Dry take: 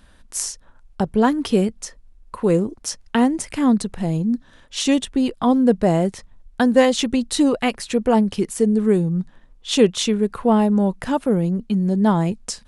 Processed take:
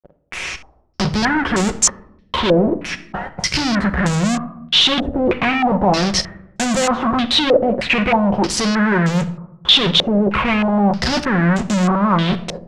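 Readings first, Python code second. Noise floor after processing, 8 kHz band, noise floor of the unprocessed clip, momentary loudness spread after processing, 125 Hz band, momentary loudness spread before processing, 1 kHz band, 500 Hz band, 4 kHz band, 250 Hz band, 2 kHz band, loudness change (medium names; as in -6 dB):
-51 dBFS, +6.0 dB, -51 dBFS, 12 LU, +3.5 dB, 10 LU, +6.0 dB, +0.5 dB, +12.5 dB, 0.0 dB, +11.0 dB, +3.0 dB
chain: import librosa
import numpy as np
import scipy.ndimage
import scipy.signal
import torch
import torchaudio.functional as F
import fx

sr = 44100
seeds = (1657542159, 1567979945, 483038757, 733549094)

p1 = scipy.signal.sosfilt(scipy.signal.butter(4, 42.0, 'highpass', fs=sr, output='sos'), x)
p2 = fx.spec_erase(p1, sr, start_s=2.82, length_s=0.75, low_hz=210.0, high_hz=1300.0)
p3 = fx.low_shelf(p2, sr, hz=86.0, db=11.0)
p4 = fx.level_steps(p3, sr, step_db=21)
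p5 = p3 + (p4 * librosa.db_to_amplitude(2.0))
p6 = fx.leveller(p5, sr, passes=2)
p7 = fx.rider(p6, sr, range_db=4, speed_s=2.0)
p8 = fx.chorus_voices(p7, sr, voices=2, hz=0.42, base_ms=14, depth_ms=1.4, mix_pct=25)
p9 = fx.fuzz(p8, sr, gain_db=34.0, gate_db=-41.0)
p10 = fx.room_shoebox(p9, sr, seeds[0], volume_m3=2100.0, walls='furnished', distance_m=1.0)
p11 = fx.filter_held_lowpass(p10, sr, hz=3.2, low_hz=560.0, high_hz=7300.0)
y = p11 * librosa.db_to_amplitude(-4.5)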